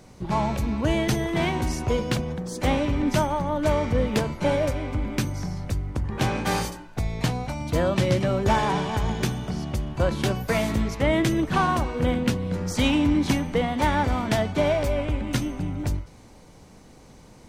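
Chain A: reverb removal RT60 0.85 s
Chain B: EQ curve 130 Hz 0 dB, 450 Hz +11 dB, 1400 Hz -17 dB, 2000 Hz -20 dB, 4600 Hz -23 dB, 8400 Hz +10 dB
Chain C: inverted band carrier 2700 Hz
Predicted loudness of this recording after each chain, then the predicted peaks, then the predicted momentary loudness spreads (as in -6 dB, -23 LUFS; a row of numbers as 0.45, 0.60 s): -26.5, -20.5, -21.0 LUFS; -9.0, -4.5, -8.0 dBFS; 8, 10, 6 LU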